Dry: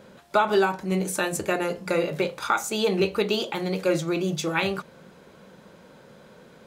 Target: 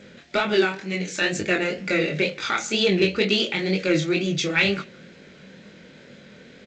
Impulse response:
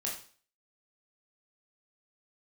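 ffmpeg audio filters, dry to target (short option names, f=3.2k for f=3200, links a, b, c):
-filter_complex "[0:a]asettb=1/sr,asplit=3[a][b][c];[a]atrim=end=0.624[d];[b]atrim=start=0.62:end=1.22,asetpts=PTS-STARTPTS,afade=t=in:d=0.004:c=qsin,afade=t=out:st=0.596:d=0.004:c=qsin,lowshelf=f=450:g=-8.5[e];[c]atrim=start=1.216[f];[d][e]acrossfade=d=0.004:c1=hsin:c2=qsin[g];[g][f]acrossfade=d=0.004:c1=qsin:c2=hsin,asoftclip=type=tanh:threshold=-12.5dB,equalizer=f=250:t=o:w=1:g=4,equalizer=f=1k:t=o:w=1:g=-12,equalizer=f=2k:t=o:w=1:g=10,equalizer=f=4k:t=o:w=1:g=4,asplit=2[h][i];[i]adelay=160,highpass=300,lowpass=3.4k,asoftclip=type=hard:threshold=-16.5dB,volume=-24dB[j];[h][j]amix=inputs=2:normalize=0,flanger=delay=19.5:depth=7.3:speed=2.1,volume=5dB" -ar 16000 -c:a g722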